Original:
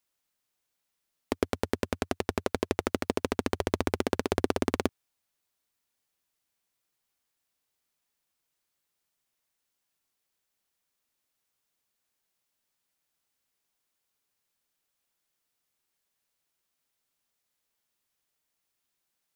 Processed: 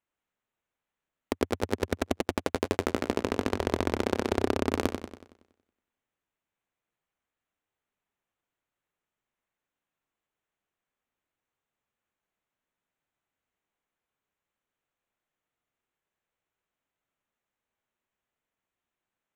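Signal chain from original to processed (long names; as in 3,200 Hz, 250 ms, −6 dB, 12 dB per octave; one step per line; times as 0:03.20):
adaptive Wiener filter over 9 samples
0:02.90–0:04.71: high-shelf EQ 8,400 Hz −6.5 dB
feedback echo with a swinging delay time 93 ms, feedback 50%, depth 95 cents, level −7 dB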